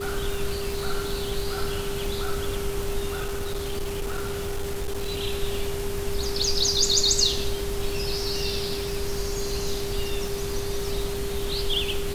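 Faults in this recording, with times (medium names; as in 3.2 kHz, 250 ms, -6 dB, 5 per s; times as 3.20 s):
crackle 180 per s -31 dBFS
whine 400 Hz -30 dBFS
3.12–5.19 s: clipped -24.5 dBFS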